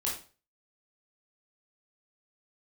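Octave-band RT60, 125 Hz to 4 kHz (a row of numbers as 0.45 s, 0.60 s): 0.45 s, 0.35 s, 0.40 s, 0.35 s, 0.35 s, 0.35 s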